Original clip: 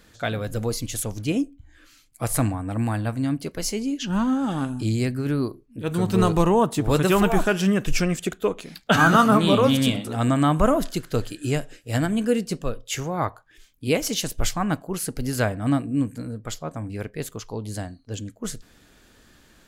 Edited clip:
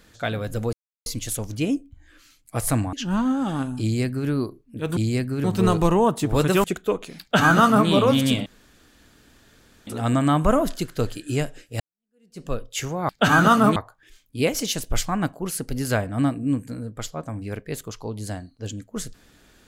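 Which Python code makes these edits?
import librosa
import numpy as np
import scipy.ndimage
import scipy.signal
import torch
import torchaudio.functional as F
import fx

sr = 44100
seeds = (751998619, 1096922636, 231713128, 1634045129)

y = fx.edit(x, sr, fx.insert_silence(at_s=0.73, length_s=0.33),
    fx.cut(start_s=2.6, length_s=1.35),
    fx.duplicate(start_s=4.84, length_s=0.47, to_s=5.99),
    fx.cut(start_s=7.19, length_s=1.01),
    fx.duplicate(start_s=8.77, length_s=0.67, to_s=13.24),
    fx.insert_room_tone(at_s=10.02, length_s=1.41),
    fx.fade_in_span(start_s=11.95, length_s=0.65, curve='exp'), tone=tone)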